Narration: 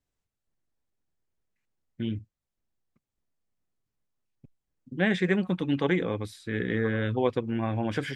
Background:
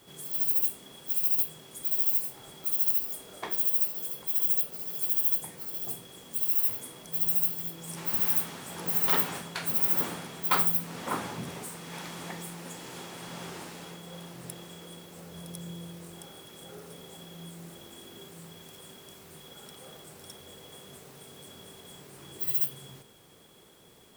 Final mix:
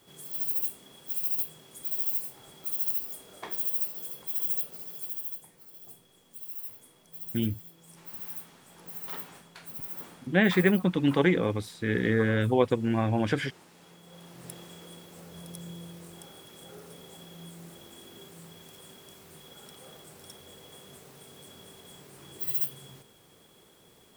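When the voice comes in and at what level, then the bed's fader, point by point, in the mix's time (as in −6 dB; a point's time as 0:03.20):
5.35 s, +2.5 dB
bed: 0:04.76 −3.5 dB
0:05.46 −13.5 dB
0:13.67 −13.5 dB
0:14.52 −1.5 dB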